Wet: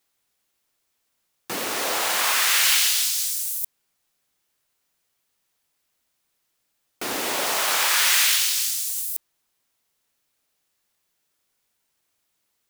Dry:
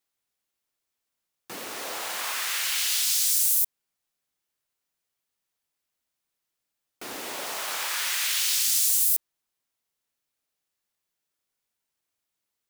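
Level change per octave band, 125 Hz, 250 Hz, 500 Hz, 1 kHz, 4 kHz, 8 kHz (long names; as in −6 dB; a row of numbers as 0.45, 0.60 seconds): can't be measured, +9.0 dB, +9.0 dB, +9.0 dB, +6.0 dB, +3.0 dB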